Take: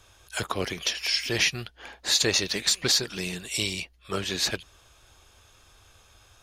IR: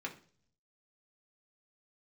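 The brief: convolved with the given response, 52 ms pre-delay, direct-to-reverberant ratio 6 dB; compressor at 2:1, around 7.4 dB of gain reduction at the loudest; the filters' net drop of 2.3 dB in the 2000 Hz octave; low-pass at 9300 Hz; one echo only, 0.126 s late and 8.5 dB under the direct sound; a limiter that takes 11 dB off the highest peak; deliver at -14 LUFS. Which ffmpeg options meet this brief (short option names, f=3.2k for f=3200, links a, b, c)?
-filter_complex "[0:a]lowpass=9.3k,equalizer=f=2k:t=o:g=-3,acompressor=threshold=-33dB:ratio=2,alimiter=level_in=3.5dB:limit=-24dB:level=0:latency=1,volume=-3.5dB,aecho=1:1:126:0.376,asplit=2[a][b];[1:a]atrim=start_sample=2205,adelay=52[c];[b][c]afir=irnorm=-1:irlink=0,volume=-7dB[d];[a][d]amix=inputs=2:normalize=0,volume=22.5dB"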